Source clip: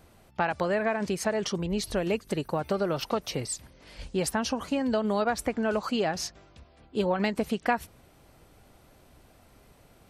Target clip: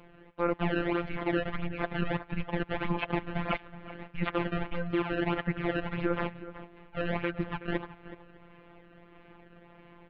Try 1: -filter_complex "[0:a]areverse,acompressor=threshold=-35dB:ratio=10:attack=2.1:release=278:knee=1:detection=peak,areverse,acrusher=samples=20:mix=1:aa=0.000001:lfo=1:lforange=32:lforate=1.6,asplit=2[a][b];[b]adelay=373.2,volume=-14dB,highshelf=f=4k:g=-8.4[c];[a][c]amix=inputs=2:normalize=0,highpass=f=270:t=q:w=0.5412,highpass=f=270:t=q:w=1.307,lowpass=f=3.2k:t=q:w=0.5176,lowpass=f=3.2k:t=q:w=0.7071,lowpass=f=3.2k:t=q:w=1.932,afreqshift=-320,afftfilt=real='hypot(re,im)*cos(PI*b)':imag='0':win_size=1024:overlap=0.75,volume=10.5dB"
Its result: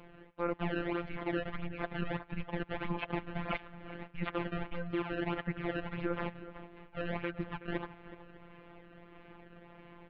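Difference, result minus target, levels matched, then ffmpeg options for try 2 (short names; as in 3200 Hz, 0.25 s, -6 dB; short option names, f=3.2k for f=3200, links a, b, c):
compressor: peak gain reduction +5.5 dB
-filter_complex "[0:a]areverse,acompressor=threshold=-29dB:ratio=10:attack=2.1:release=278:knee=1:detection=peak,areverse,acrusher=samples=20:mix=1:aa=0.000001:lfo=1:lforange=32:lforate=1.6,asplit=2[a][b];[b]adelay=373.2,volume=-14dB,highshelf=f=4k:g=-8.4[c];[a][c]amix=inputs=2:normalize=0,highpass=f=270:t=q:w=0.5412,highpass=f=270:t=q:w=1.307,lowpass=f=3.2k:t=q:w=0.5176,lowpass=f=3.2k:t=q:w=0.7071,lowpass=f=3.2k:t=q:w=1.932,afreqshift=-320,afftfilt=real='hypot(re,im)*cos(PI*b)':imag='0':win_size=1024:overlap=0.75,volume=10.5dB"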